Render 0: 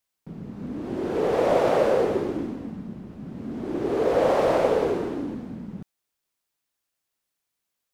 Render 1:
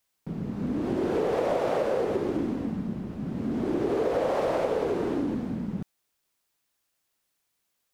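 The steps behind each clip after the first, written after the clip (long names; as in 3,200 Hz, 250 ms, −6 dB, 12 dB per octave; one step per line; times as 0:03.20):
downward compressor 6 to 1, threshold −28 dBFS, peak gain reduction 12 dB
level +4.5 dB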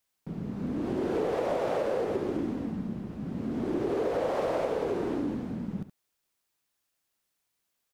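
single-tap delay 71 ms −13 dB
level −3 dB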